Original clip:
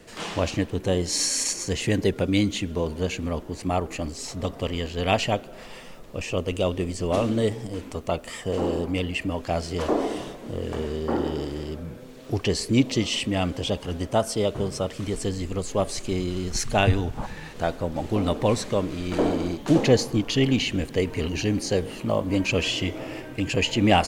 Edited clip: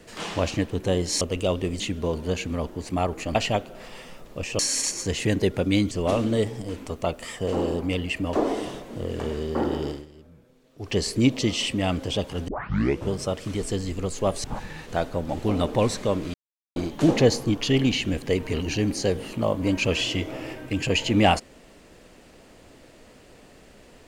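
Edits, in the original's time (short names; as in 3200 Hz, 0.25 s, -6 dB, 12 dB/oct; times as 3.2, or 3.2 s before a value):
1.21–2.53 swap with 6.37–6.96
4.08–5.13 cut
9.38–9.86 cut
11.41–12.5 dip -16 dB, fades 0.18 s
14.01 tape start 0.62 s
15.97–17.11 cut
19.01–19.43 mute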